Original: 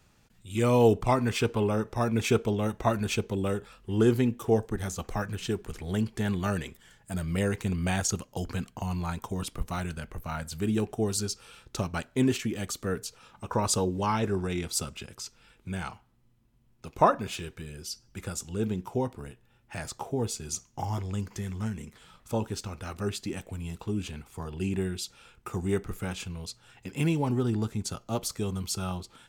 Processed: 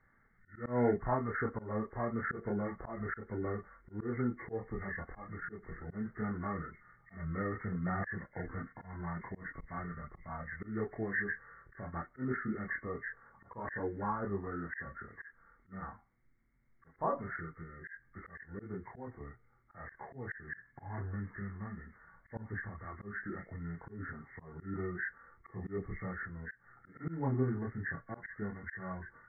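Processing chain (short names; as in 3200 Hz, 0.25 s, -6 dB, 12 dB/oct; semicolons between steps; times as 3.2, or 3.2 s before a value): nonlinear frequency compression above 1100 Hz 4:1; chorus voices 4, 0.15 Hz, delay 27 ms, depth 3.8 ms; auto swell 0.164 s; gain -5 dB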